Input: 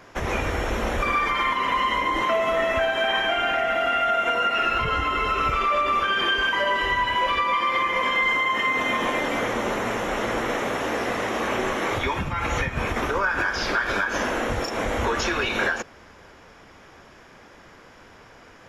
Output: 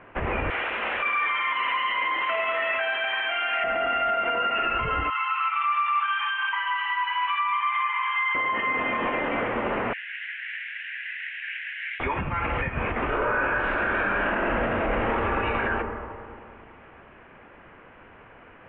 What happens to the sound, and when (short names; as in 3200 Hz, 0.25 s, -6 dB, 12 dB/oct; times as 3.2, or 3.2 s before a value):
0.5–3.64 weighting filter ITU-R 468
5.1–8.35 rippled Chebyshev high-pass 820 Hz, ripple 3 dB
9.93–12 steep high-pass 1600 Hz 96 dB/oct
13.07–15.18 reverb throw, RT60 2.3 s, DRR -10.5 dB
whole clip: limiter -16.5 dBFS; elliptic low-pass 2800 Hz, stop band 50 dB